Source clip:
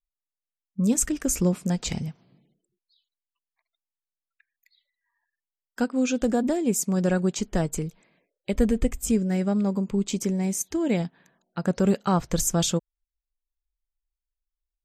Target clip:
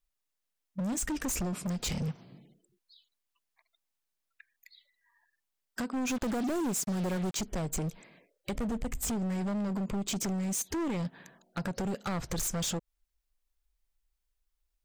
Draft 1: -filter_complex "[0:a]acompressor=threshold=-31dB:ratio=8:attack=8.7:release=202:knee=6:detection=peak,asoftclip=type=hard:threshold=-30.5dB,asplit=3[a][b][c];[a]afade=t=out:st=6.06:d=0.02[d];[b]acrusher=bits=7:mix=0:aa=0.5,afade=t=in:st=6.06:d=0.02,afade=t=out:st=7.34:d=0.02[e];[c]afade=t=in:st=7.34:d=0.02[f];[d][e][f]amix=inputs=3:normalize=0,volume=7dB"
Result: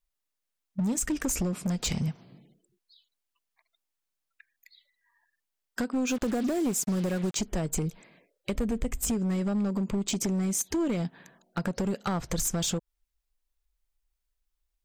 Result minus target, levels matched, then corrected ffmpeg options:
hard clip: distortion -6 dB
-filter_complex "[0:a]acompressor=threshold=-31dB:ratio=8:attack=8.7:release=202:knee=6:detection=peak,asoftclip=type=hard:threshold=-37dB,asplit=3[a][b][c];[a]afade=t=out:st=6.06:d=0.02[d];[b]acrusher=bits=7:mix=0:aa=0.5,afade=t=in:st=6.06:d=0.02,afade=t=out:st=7.34:d=0.02[e];[c]afade=t=in:st=7.34:d=0.02[f];[d][e][f]amix=inputs=3:normalize=0,volume=7dB"

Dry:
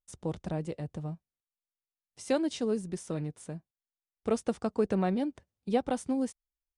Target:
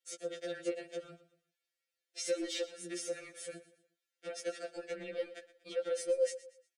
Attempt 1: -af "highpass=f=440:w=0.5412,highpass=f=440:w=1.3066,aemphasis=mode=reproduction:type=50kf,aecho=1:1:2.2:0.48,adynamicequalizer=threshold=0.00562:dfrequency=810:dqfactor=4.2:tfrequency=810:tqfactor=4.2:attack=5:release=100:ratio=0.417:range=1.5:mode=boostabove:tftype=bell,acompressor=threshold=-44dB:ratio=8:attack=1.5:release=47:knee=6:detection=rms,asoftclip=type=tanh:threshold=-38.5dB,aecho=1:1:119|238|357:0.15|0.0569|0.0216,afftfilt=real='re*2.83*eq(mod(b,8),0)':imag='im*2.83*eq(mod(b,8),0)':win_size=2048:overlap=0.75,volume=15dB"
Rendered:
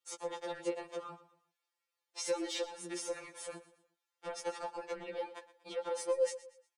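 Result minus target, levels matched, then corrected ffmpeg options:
1000 Hz band +11.5 dB
-af "highpass=f=440:w=0.5412,highpass=f=440:w=1.3066,aemphasis=mode=reproduction:type=50kf,aecho=1:1:2.2:0.48,adynamicequalizer=threshold=0.00562:dfrequency=810:dqfactor=4.2:tfrequency=810:tqfactor=4.2:attack=5:release=100:ratio=0.417:range=1.5:mode=boostabove:tftype=bell,asuperstop=centerf=990:order=8:qfactor=1.4,acompressor=threshold=-44dB:ratio=8:attack=1.5:release=47:knee=6:detection=rms,asoftclip=type=tanh:threshold=-38.5dB,aecho=1:1:119|238|357:0.15|0.0569|0.0216,afftfilt=real='re*2.83*eq(mod(b,8),0)':imag='im*2.83*eq(mod(b,8),0)':win_size=2048:overlap=0.75,volume=15dB"

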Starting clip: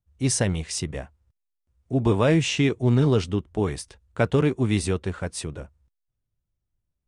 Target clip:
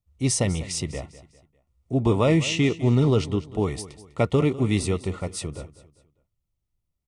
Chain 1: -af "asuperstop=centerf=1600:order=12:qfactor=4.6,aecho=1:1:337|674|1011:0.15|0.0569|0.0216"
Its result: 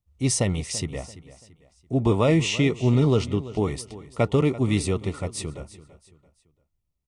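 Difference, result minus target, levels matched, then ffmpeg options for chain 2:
echo 0.137 s late
-af "asuperstop=centerf=1600:order=12:qfactor=4.6,aecho=1:1:200|400|600:0.15|0.0569|0.0216"

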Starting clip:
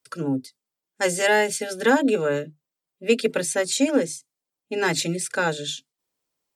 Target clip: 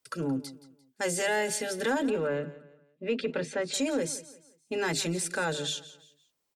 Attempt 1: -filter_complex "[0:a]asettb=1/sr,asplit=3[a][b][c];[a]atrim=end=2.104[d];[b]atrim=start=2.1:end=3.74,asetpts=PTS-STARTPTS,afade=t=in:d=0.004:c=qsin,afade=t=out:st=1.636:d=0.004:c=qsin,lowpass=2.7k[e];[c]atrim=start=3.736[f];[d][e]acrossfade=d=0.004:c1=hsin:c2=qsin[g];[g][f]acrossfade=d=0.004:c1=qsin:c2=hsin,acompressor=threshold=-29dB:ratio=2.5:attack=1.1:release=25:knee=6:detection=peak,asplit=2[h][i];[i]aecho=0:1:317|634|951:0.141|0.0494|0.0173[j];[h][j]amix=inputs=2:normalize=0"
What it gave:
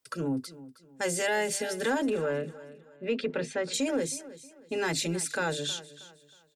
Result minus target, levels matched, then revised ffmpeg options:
echo 0.144 s late
-filter_complex "[0:a]asettb=1/sr,asplit=3[a][b][c];[a]atrim=end=2.104[d];[b]atrim=start=2.1:end=3.74,asetpts=PTS-STARTPTS,afade=t=in:d=0.004:c=qsin,afade=t=out:st=1.636:d=0.004:c=qsin,lowpass=2.7k[e];[c]atrim=start=3.736[f];[d][e]acrossfade=d=0.004:c1=hsin:c2=qsin[g];[g][f]acrossfade=d=0.004:c1=qsin:c2=hsin,acompressor=threshold=-29dB:ratio=2.5:attack=1.1:release=25:knee=6:detection=peak,asplit=2[h][i];[i]aecho=0:1:173|346|519:0.141|0.0494|0.0173[j];[h][j]amix=inputs=2:normalize=0"

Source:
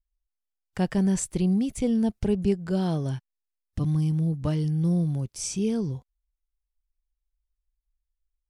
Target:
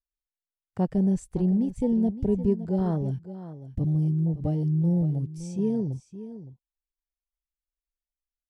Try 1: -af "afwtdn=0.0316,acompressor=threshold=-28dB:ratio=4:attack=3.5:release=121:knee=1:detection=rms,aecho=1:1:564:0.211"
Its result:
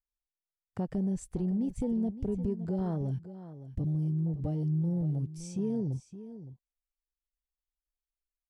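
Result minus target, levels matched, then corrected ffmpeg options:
compressor: peak gain reduction +10 dB
-af "afwtdn=0.0316,aecho=1:1:564:0.211"

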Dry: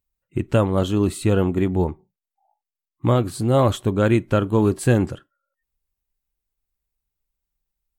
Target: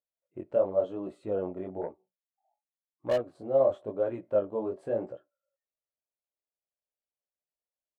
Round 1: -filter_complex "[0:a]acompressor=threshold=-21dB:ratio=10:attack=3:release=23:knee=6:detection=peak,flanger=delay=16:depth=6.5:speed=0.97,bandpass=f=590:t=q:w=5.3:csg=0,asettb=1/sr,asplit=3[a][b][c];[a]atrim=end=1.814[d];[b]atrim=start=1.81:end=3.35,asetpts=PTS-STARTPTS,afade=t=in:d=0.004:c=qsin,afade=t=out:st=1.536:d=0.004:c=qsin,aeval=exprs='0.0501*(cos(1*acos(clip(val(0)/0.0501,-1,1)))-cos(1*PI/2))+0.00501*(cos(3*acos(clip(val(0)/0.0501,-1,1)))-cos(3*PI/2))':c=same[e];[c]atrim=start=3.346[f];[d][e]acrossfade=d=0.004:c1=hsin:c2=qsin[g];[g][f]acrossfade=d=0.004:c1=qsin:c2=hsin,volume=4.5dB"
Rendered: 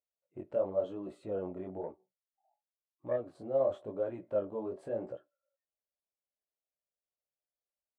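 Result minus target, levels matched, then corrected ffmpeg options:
compressor: peak gain reduction +6.5 dB
-filter_complex "[0:a]acompressor=threshold=-13dB:ratio=10:attack=3:release=23:knee=6:detection=peak,flanger=delay=16:depth=6.5:speed=0.97,bandpass=f=590:t=q:w=5.3:csg=0,asettb=1/sr,asplit=3[a][b][c];[a]atrim=end=1.814[d];[b]atrim=start=1.81:end=3.35,asetpts=PTS-STARTPTS,afade=t=in:d=0.004:c=qsin,afade=t=out:st=1.536:d=0.004:c=qsin,aeval=exprs='0.0501*(cos(1*acos(clip(val(0)/0.0501,-1,1)))-cos(1*PI/2))+0.00501*(cos(3*acos(clip(val(0)/0.0501,-1,1)))-cos(3*PI/2))':c=same[e];[c]atrim=start=3.346[f];[d][e]acrossfade=d=0.004:c1=hsin:c2=qsin[g];[g][f]acrossfade=d=0.004:c1=qsin:c2=hsin,volume=4.5dB"

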